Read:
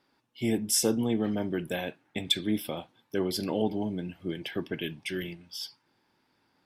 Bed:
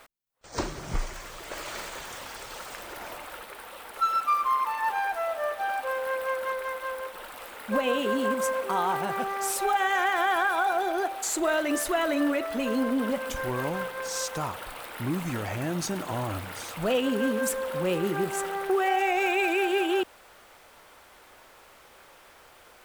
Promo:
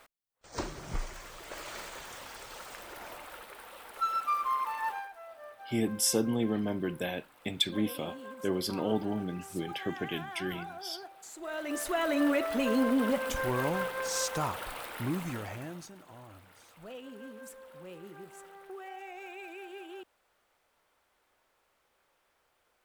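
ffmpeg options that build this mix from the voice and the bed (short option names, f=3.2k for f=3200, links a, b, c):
-filter_complex "[0:a]adelay=5300,volume=-2dB[a];[1:a]volume=12.5dB,afade=t=out:st=4.86:d=0.23:silence=0.223872,afade=t=in:st=11.38:d=1:silence=0.125893,afade=t=out:st=14.74:d=1.17:silence=0.105925[b];[a][b]amix=inputs=2:normalize=0"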